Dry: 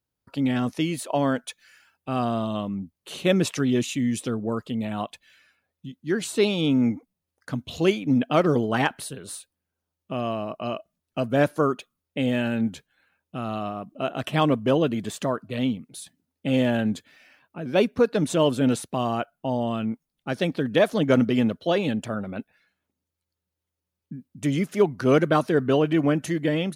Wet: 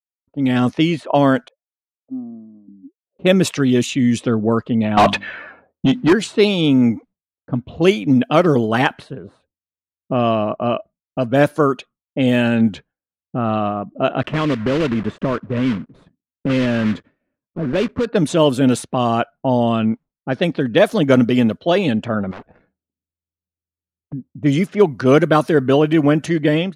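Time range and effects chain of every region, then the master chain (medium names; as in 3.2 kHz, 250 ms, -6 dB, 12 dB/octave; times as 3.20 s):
1.48–3.19 s: dynamic bell 490 Hz, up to -4 dB, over -37 dBFS, Q 1.2 + auto-wah 270–1100 Hz, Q 17, down, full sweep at -29 dBFS
4.97–6.13 s: hum notches 50/100/150/200/250/300 Hz + overdrive pedal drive 35 dB, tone 1.5 kHz, clips at -13 dBFS
14.22–18.06 s: block-companded coder 3-bit + peaking EQ 780 Hz -9 dB 0.46 oct + compression 3:1, threshold -26 dBFS
22.31–24.13 s: waveshaping leveller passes 2 + spectrum-flattening compressor 10:1
whole clip: expander -43 dBFS; level-controlled noise filter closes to 400 Hz, open at -19 dBFS; level rider gain up to 11.5 dB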